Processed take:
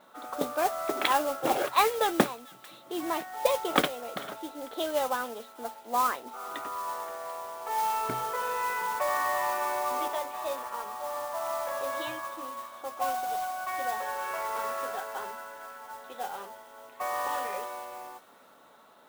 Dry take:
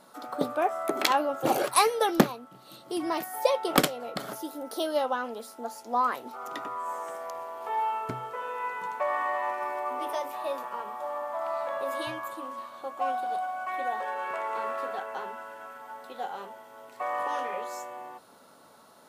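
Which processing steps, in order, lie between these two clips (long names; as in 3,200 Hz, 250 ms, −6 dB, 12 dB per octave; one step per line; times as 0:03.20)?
elliptic low-pass filter 3,800 Hz
low-shelf EQ 160 Hz −10.5 dB
noise that follows the level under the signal 13 dB
delay with a high-pass on its return 444 ms, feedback 36%, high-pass 2,000 Hz, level −18 dB
0:07.80–0:10.08: envelope flattener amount 50%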